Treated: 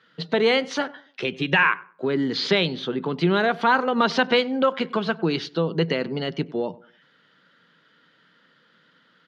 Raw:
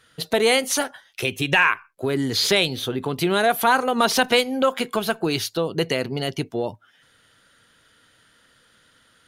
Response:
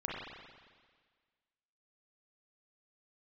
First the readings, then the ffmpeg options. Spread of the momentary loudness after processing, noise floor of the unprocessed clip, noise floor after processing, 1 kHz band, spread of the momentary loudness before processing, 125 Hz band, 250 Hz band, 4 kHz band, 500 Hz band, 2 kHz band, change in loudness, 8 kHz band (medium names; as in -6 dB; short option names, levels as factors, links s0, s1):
9 LU, -59 dBFS, -61 dBFS, -1.5 dB, 9 LU, +0.5 dB, +1.0 dB, -3.5 dB, -1.0 dB, -1.0 dB, -1.5 dB, under -15 dB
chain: -filter_complex "[0:a]highpass=f=160:w=0.5412,highpass=f=160:w=1.3066,equalizer=f=170:t=q:w=4:g=8,equalizer=f=700:t=q:w=4:g=-5,equalizer=f=2500:t=q:w=4:g=-4,equalizer=f=3600:t=q:w=4:g=-3,lowpass=f=4200:w=0.5412,lowpass=f=4200:w=1.3066,asplit=2[s0][s1];[s1]adelay=97,lowpass=f=1300:p=1,volume=0.112,asplit=2[s2][s3];[s3]adelay=97,lowpass=f=1300:p=1,volume=0.36,asplit=2[s4][s5];[s5]adelay=97,lowpass=f=1300:p=1,volume=0.36[s6];[s0][s2][s4][s6]amix=inputs=4:normalize=0"